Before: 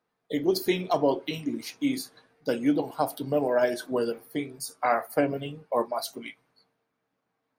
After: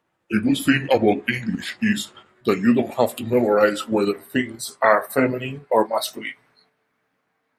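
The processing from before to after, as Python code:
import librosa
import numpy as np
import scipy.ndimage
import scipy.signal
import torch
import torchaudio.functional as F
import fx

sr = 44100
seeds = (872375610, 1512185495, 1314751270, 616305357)

p1 = fx.pitch_glide(x, sr, semitones=-5.5, runs='ending unshifted')
p2 = fx.peak_eq(p1, sr, hz=1900.0, db=7.5, octaves=1.2)
p3 = fx.level_steps(p2, sr, step_db=15)
p4 = p2 + (p3 * 10.0 ** (-2.5 / 20.0))
y = p4 * 10.0 ** (5.0 / 20.0)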